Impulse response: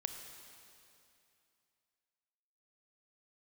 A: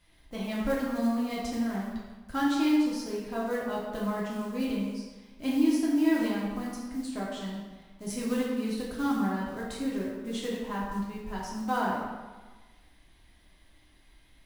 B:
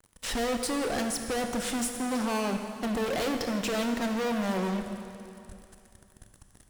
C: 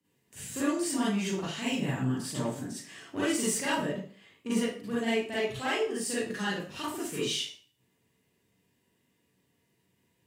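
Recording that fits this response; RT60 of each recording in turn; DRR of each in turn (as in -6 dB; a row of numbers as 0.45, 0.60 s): B; 1.3, 2.7, 0.45 s; -6.0, 5.5, -10.5 dB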